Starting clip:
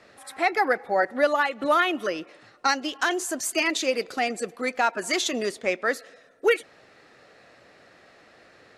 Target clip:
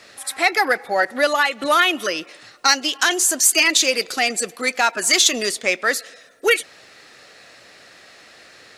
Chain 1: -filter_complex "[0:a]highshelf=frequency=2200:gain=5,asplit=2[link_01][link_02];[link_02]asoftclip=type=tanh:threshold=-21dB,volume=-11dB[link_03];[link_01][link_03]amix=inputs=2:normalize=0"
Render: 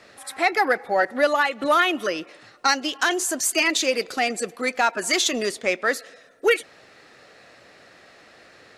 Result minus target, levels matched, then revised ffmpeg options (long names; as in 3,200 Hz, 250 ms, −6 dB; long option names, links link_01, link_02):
4,000 Hz band −2.5 dB
-filter_complex "[0:a]highshelf=frequency=2200:gain=15,asplit=2[link_01][link_02];[link_02]asoftclip=type=tanh:threshold=-21dB,volume=-11dB[link_03];[link_01][link_03]amix=inputs=2:normalize=0"